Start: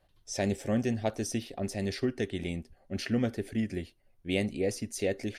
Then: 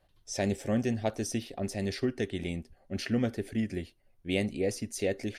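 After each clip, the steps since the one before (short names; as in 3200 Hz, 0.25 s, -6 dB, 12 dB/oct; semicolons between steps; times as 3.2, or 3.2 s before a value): nothing audible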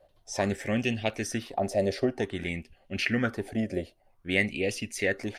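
LFO bell 0.53 Hz 560–2900 Hz +17 dB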